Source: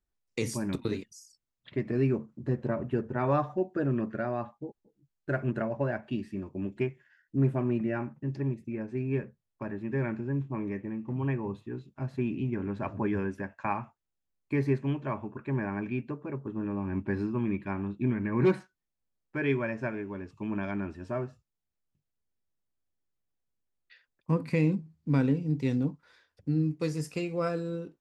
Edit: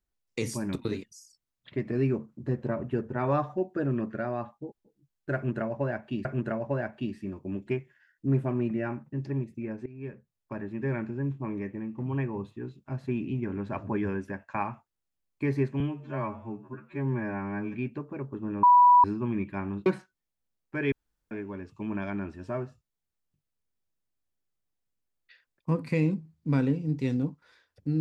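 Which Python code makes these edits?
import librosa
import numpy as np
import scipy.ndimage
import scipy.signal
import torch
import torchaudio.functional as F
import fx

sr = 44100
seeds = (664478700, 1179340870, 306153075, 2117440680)

y = fx.edit(x, sr, fx.repeat(start_s=5.35, length_s=0.9, count=2),
    fx.fade_in_from(start_s=8.96, length_s=0.66, floor_db=-18.5),
    fx.stretch_span(start_s=14.9, length_s=0.97, factor=2.0),
    fx.bleep(start_s=16.76, length_s=0.41, hz=981.0, db=-13.5),
    fx.cut(start_s=17.99, length_s=0.48),
    fx.room_tone_fill(start_s=19.53, length_s=0.39), tone=tone)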